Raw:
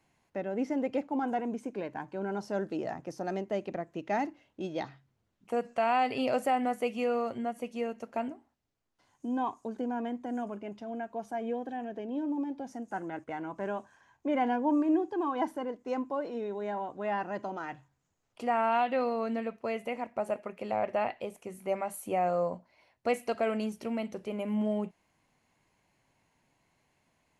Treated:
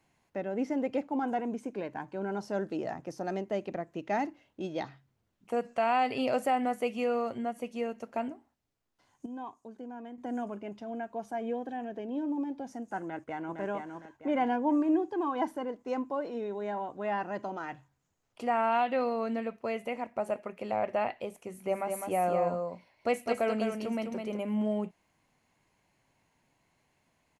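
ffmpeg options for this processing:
-filter_complex "[0:a]asplit=2[s0][s1];[s1]afade=t=in:st=13.02:d=0.01,afade=t=out:st=13.59:d=0.01,aecho=0:1:460|920|1380|1840|2300:0.562341|0.224937|0.0899746|0.0359898|0.0143959[s2];[s0][s2]amix=inputs=2:normalize=0,asettb=1/sr,asplit=3[s3][s4][s5];[s3]atrim=end=21.434[s6];[s4]atrim=start=21.43:end=24.37,asetpts=PTS-STARTPTS,afade=t=in:d=0.004:c=qsin,afade=t=out:st=2.936:d=0.004:c=qsin,aecho=1:1:206:0.562,atrim=end_sample=129654[s7];[s5]atrim=start=24.366[s8];[s6][s7]acrossfade=d=0.004:c1=hsin:c2=qsin[s9];[s9][s8]acrossfade=d=0.004:c1=qsin:c2=hsin,asplit=3[s10][s11][s12];[s10]atrim=end=9.262[s13];[s11]atrim=start=9.258:end=10.182,asetpts=PTS-STARTPTS,volume=0.335[s14];[s12]atrim=start=10.178[s15];[s13][s14]acrossfade=d=0.004:c1=hsin:c2=hsin[s16];[s16][s15]acrossfade=d=0.004:c1=hsin:c2=hsin"

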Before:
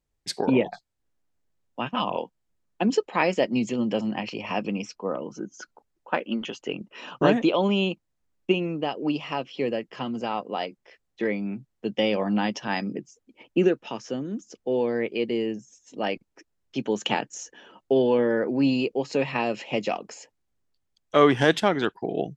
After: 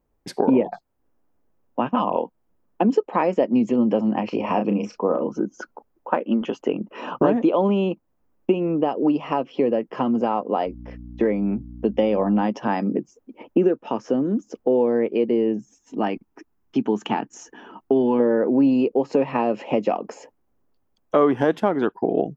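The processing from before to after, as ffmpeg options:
-filter_complex "[0:a]asettb=1/sr,asplit=3[s0][s1][s2];[s0]atrim=end=4.294[s3];[s1]atrim=start=4.29:end=5.28,asetpts=PTS-STARTPTS,afade=t=in:d=0.004:c=qsin,afade=t=out:st=0.986:d=0.004:c=qsin,asplit=2[s4][s5];[s5]adelay=34,volume=0.473[s6];[s4][s6]amix=inputs=2:normalize=0,atrim=end_sample=43659[s7];[s2]atrim=start=5.276[s8];[s3][s7]acrossfade=d=0.004:c1=hsin:c2=qsin[s9];[s9][s8]acrossfade=d=0.004:c1=qsin:c2=hsin,asettb=1/sr,asplit=3[s10][s11][s12];[s10]atrim=end=10.664[s13];[s11]atrim=start=10.66:end=12.43,asetpts=PTS-STARTPTS,afade=t=in:d=0.004:c=qsin,afade=t=out:st=1.766:d=0.004:c=qsin,aeval=exprs='val(0)+0.00562*(sin(2*PI*60*n/s)+sin(2*PI*2*60*n/s)/2+sin(2*PI*3*60*n/s)/3+sin(2*PI*4*60*n/s)/4+sin(2*PI*5*60*n/s)/5)':c=same[s14];[s12]atrim=start=12.426[s15];[s13][s14]acrossfade=d=0.004:c1=hsin:c2=qsin[s16];[s16][s15]acrossfade=d=0.004:c1=qsin:c2=hsin,asettb=1/sr,asplit=3[s17][s18][s19];[s17]atrim=end=15.574[s20];[s18]atrim=start=15.57:end=18.2,asetpts=PTS-STARTPTS,afade=t=in:d=0.004:c=qsin,afade=t=out:st=2.626:d=0.004:c=qsin,equalizer=f=540:t=o:w=0.43:g=-14[s21];[s19]atrim=start=18.196[s22];[s20][s21]acrossfade=d=0.004:c1=hsin:c2=qsin[s23];[s23][s22]acrossfade=d=0.004:c1=qsin:c2=hsin,acompressor=threshold=0.0251:ratio=2.5,equalizer=f=125:t=o:w=1:g=-3,equalizer=f=250:t=o:w=1:g=6,equalizer=f=500:t=o:w=1:g=4,equalizer=f=1000:t=o:w=1:g=5,equalizer=f=2000:t=o:w=1:g=-4,equalizer=f=4000:t=o:w=1:g=-10,equalizer=f=8000:t=o:w=1:g=-11,volume=2.37"

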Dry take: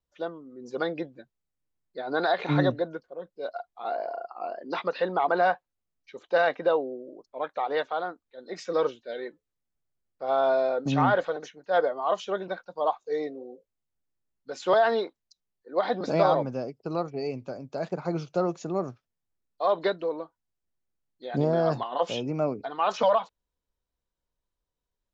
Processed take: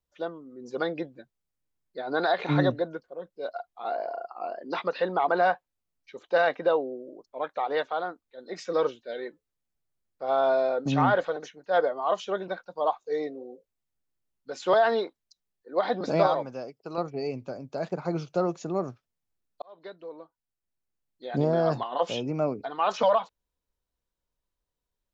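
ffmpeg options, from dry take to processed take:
-filter_complex "[0:a]asettb=1/sr,asplit=3[s0][s1][s2];[s0]atrim=end=16.274[s3];[s1]atrim=start=16.27:end=16.98,asetpts=PTS-STARTPTS,afade=t=in:d=0.004:c=qsin,afade=t=out:st=0.706:d=0.004:c=qsin,lowshelf=f=380:g=-11[s4];[s2]atrim=start=16.976[s5];[s3][s4]acrossfade=d=0.004:c1=hsin:c2=qsin[s6];[s6][s5]acrossfade=d=0.004:c1=qsin:c2=hsin,asplit=2[s7][s8];[s7]atrim=end=19.62,asetpts=PTS-STARTPTS,afade=t=out:st=19.616:d=0.004:c=hsin[s9];[s8]atrim=start=19.62,asetpts=PTS-STARTPTS,afade=t=in:d=1.69[s10];[s9][s10]concat=n=2:v=0:a=1"

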